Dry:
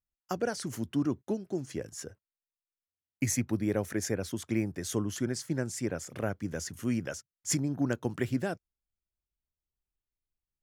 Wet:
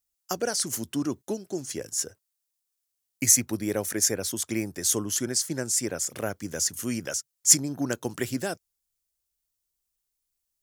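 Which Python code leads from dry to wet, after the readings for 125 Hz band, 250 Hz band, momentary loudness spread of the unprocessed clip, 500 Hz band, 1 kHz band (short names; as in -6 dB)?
-2.5 dB, +0.5 dB, 9 LU, +2.5 dB, +3.0 dB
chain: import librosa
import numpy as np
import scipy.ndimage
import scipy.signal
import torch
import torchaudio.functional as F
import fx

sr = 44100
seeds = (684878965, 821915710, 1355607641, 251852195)

y = fx.bass_treble(x, sr, bass_db=-6, treble_db=13)
y = F.gain(torch.from_numpy(y), 3.0).numpy()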